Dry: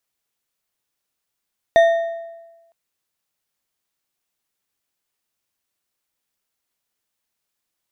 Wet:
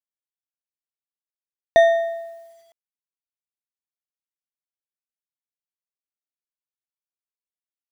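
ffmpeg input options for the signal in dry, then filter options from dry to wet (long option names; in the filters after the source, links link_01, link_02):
-f lavfi -i "aevalsrc='0.447*pow(10,-3*t/1.17)*sin(2*PI*669*t)+0.133*pow(10,-3*t/0.863)*sin(2*PI*1844.4*t)+0.0398*pow(10,-3*t/0.705)*sin(2*PI*3615.3*t)+0.0119*pow(10,-3*t/0.607)*sin(2*PI*5976.2*t)+0.00355*pow(10,-3*t/0.538)*sin(2*PI*8924.5*t)':duration=0.96:sample_rate=44100"
-af "acrusher=bits=9:mix=0:aa=0.000001"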